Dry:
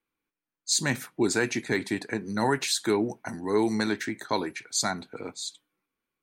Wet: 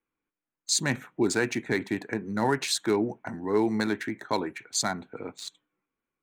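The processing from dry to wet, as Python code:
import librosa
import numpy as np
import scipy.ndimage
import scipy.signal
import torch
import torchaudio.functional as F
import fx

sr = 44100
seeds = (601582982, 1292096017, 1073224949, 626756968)

y = fx.wiener(x, sr, points=9)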